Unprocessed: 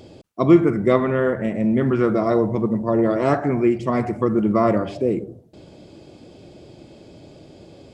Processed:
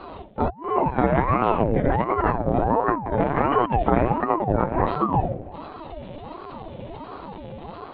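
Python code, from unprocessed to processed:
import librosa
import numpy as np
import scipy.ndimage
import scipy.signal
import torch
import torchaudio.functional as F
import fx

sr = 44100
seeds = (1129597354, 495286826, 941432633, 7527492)

y = fx.law_mismatch(x, sr, coded='mu')
y = scipy.signal.sosfilt(scipy.signal.butter(2, 180.0, 'highpass', fs=sr, output='sos'), y)
y = fx.room_shoebox(y, sr, seeds[0], volume_m3=37.0, walls='mixed', distance_m=0.51)
y = fx.over_compress(y, sr, threshold_db=-18.0, ratio=-0.5)
y = fx.echo_feedback(y, sr, ms=328, feedback_pct=27, wet_db=-20.5)
y = fx.lpc_vocoder(y, sr, seeds[1], excitation='pitch_kept', order=16)
y = fx.dynamic_eq(y, sr, hz=2900.0, q=1.6, threshold_db=-46.0, ratio=4.0, max_db=-4)
y = fx.ring_lfo(y, sr, carrier_hz=470.0, swing_pct=60, hz=1.4)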